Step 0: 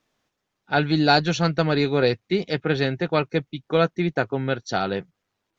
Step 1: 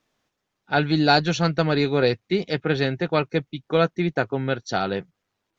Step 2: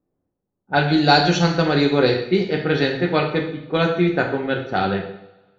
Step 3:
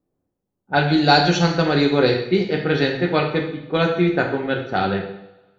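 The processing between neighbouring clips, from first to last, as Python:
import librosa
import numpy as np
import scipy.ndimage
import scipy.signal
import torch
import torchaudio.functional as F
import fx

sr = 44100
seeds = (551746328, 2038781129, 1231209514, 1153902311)

y1 = x
y2 = fx.env_lowpass(y1, sr, base_hz=440.0, full_db=-16.0)
y2 = fx.rev_double_slope(y2, sr, seeds[0], early_s=0.63, late_s=1.6, knee_db=-19, drr_db=1.0)
y2 = y2 * 10.0 ** (1.5 / 20.0)
y3 = fx.echo_feedback(y2, sr, ms=81, feedback_pct=52, wet_db=-20.5)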